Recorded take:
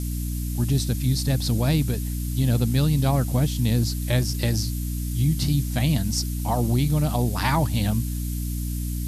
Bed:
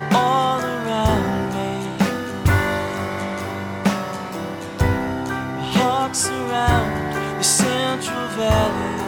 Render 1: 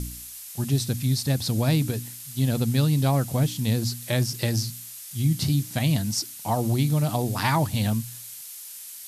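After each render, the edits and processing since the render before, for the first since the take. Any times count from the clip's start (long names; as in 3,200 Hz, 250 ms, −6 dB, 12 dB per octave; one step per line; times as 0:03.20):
hum removal 60 Hz, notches 5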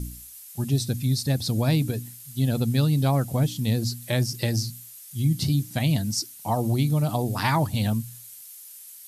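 broadband denoise 8 dB, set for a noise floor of −41 dBFS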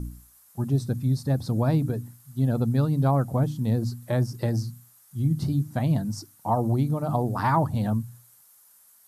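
high shelf with overshoot 1,800 Hz −12 dB, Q 1.5
mains-hum notches 50/100/150 Hz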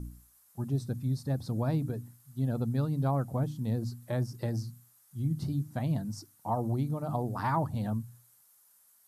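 level −7 dB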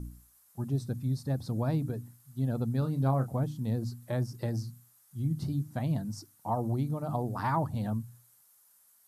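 0:02.79–0:03.36: double-tracking delay 30 ms −9 dB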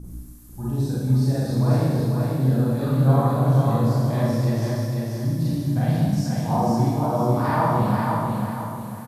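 repeating echo 494 ms, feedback 39%, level −3.5 dB
four-comb reverb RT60 1.6 s, combs from 31 ms, DRR −9.5 dB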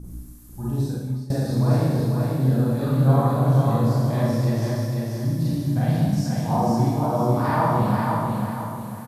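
0:00.80–0:01.30: fade out, to −20 dB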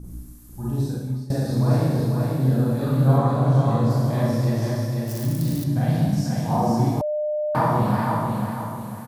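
0:03.18–0:03.90: low-pass filter 8,500 Hz
0:05.07–0:05.64: spike at every zero crossing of −24.5 dBFS
0:07.01–0:07.55: beep over 603 Hz −21.5 dBFS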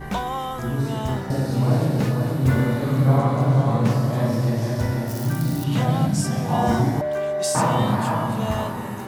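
mix in bed −10 dB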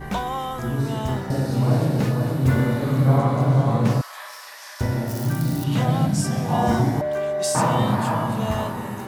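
0:04.01–0:04.81: high-pass filter 1,100 Hz 24 dB per octave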